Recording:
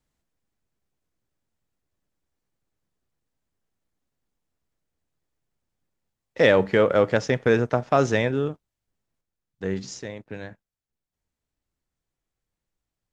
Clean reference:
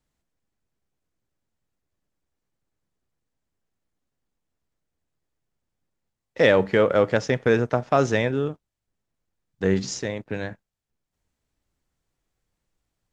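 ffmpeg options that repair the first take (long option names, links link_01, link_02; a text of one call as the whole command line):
ffmpeg -i in.wav -af "asetnsamples=nb_out_samples=441:pad=0,asendcmd='9.21 volume volume 6.5dB',volume=0dB" out.wav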